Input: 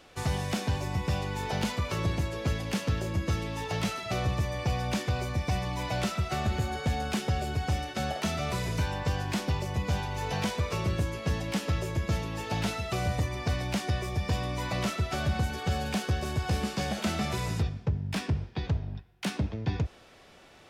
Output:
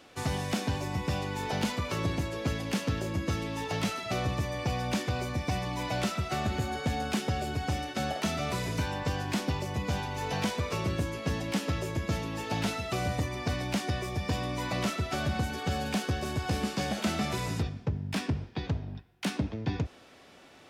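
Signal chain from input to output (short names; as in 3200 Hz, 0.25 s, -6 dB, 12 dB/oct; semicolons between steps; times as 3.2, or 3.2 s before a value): HPF 99 Hz 6 dB/oct; bell 270 Hz +6 dB 0.34 oct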